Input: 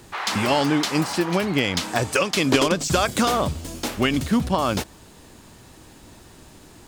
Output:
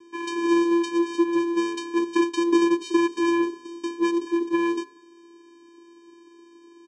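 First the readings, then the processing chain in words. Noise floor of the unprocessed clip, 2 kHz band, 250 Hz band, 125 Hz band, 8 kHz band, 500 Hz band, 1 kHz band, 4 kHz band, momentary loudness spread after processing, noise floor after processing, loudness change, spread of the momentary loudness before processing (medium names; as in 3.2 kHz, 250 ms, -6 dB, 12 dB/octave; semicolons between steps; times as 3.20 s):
-48 dBFS, -6.5 dB, +1.5 dB, under -25 dB, -12.0 dB, -1.0 dB, -5.0 dB, -11.0 dB, 8 LU, -52 dBFS, -2.0 dB, 7 LU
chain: hum notches 60/120/180/240 Hz; vocoder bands 4, square 340 Hz; speakerphone echo 190 ms, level -22 dB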